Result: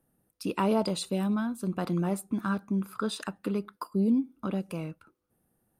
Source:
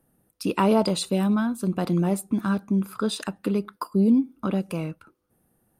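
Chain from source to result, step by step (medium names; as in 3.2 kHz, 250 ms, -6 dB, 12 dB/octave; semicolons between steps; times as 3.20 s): 1.64–3.65 s: dynamic bell 1.3 kHz, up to +5 dB, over -43 dBFS, Q 1.3; trim -6 dB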